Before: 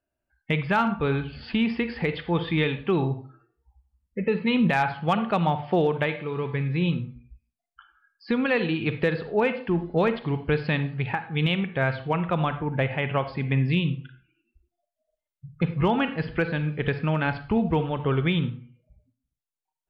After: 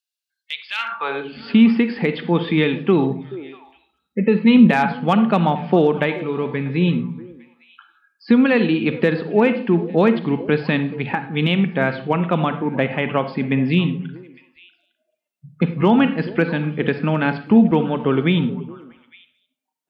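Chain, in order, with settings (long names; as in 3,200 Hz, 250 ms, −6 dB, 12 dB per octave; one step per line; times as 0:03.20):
high-pass filter sweep 3,900 Hz → 220 Hz, 0:00.68–0:01.39
echo through a band-pass that steps 214 ms, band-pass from 150 Hz, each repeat 1.4 octaves, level −11.5 dB
level +4.5 dB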